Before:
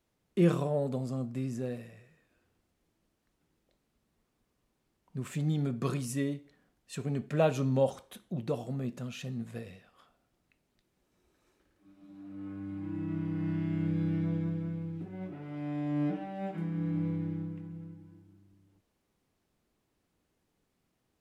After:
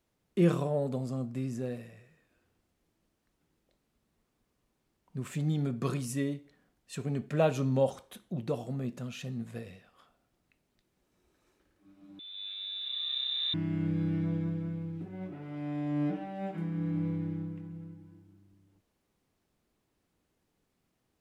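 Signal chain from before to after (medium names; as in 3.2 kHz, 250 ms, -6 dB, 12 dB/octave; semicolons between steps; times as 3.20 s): 12.19–13.54 s: frequency inversion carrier 3.8 kHz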